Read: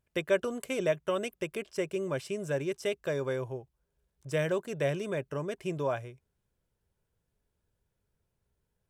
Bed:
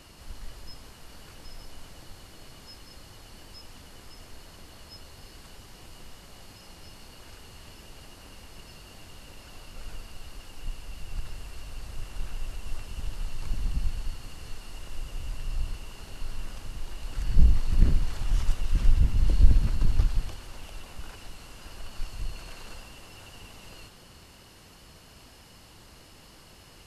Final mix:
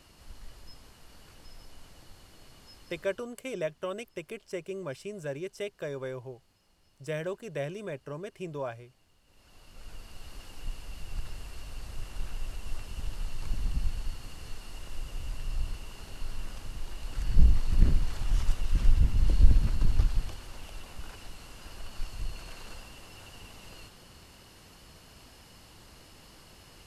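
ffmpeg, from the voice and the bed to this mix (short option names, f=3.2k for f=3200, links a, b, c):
-filter_complex "[0:a]adelay=2750,volume=-4.5dB[a];[1:a]volume=12.5dB,afade=t=out:st=2.95:d=0.33:silence=0.199526,afade=t=in:st=9.24:d=1.15:silence=0.11885[b];[a][b]amix=inputs=2:normalize=0"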